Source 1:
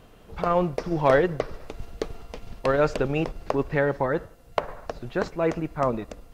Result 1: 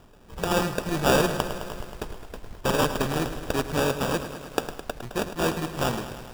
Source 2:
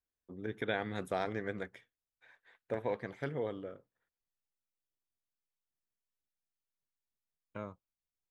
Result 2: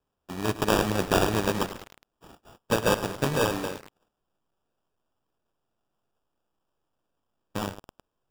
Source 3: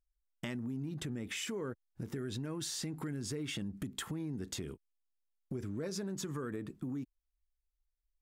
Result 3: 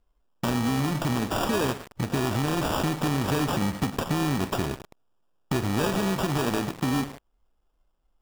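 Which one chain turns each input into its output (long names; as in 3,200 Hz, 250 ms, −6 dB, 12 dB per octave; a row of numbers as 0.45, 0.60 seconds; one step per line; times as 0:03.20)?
samples in bit-reversed order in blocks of 32 samples
decimation without filtering 21×
feedback echo at a low word length 106 ms, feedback 80%, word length 7 bits, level −11.5 dB
loudness normalisation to −27 LKFS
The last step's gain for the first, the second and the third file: −1.5, +12.0, +13.5 decibels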